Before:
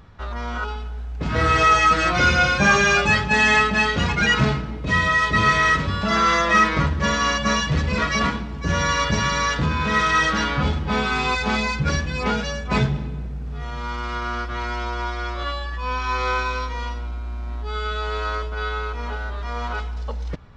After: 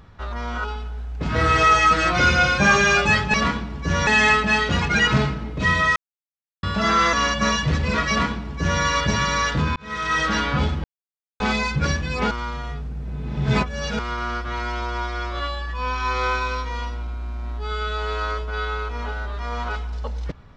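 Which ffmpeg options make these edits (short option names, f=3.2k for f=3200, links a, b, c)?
-filter_complex "[0:a]asplit=11[a][b][c][d][e][f][g][h][i][j][k];[a]atrim=end=3.342[l];[b]atrim=start=8.128:end=8.862[m];[c]atrim=start=3.338:end=5.23,asetpts=PTS-STARTPTS,afade=t=out:st=1.888:d=0.004:c=hsin[n];[d]atrim=start=5.23:end=5.9,asetpts=PTS-STARTPTS,volume=0[o];[e]atrim=start=5.9:end=6.402,asetpts=PTS-STARTPTS,afade=t=in:d=0.004:c=hsin[p];[f]atrim=start=7.168:end=9.8,asetpts=PTS-STARTPTS,afade=t=out:st=2.628:d=0.004:c=hsin[q];[g]atrim=start=9.8:end=10.88,asetpts=PTS-STARTPTS,afade=t=in:d=0.56,afade=t=out:st=1.076:d=0.004:c=hsin[r];[h]atrim=start=10.88:end=11.44,asetpts=PTS-STARTPTS,volume=0[s];[i]atrim=start=11.44:end=12.352,asetpts=PTS-STARTPTS,afade=t=in:d=0.004:c=hsin[t];[j]atrim=start=12.348:end=14.032,asetpts=PTS-STARTPTS,areverse[u];[k]atrim=start=14.028[v];[l][m]acrossfade=d=0.004:c1=hsin:c2=hsin[w];[n][o][p]concat=n=3:v=0:a=1[x];[w][x]acrossfade=d=0.004:c1=hsin:c2=hsin[y];[q][r][s][t]concat=n=4:v=0:a=1[z];[y][z]acrossfade=d=0.004:c1=hsin:c2=hsin[aa];[aa][u]acrossfade=d=0.004:c1=hsin:c2=hsin[ab];[ab][v]acrossfade=d=0.004:c1=hsin:c2=hsin"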